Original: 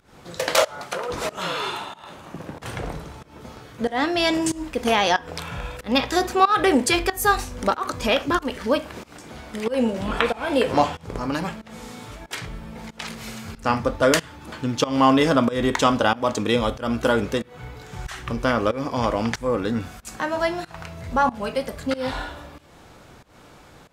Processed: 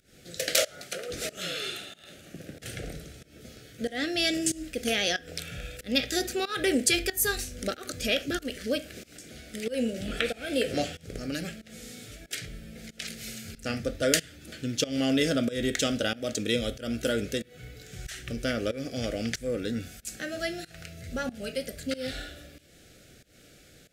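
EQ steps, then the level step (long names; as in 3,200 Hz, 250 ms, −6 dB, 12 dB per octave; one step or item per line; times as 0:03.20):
Butterworth band-reject 980 Hz, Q 1.1
high-shelf EQ 3,800 Hz +9.5 dB
−7.0 dB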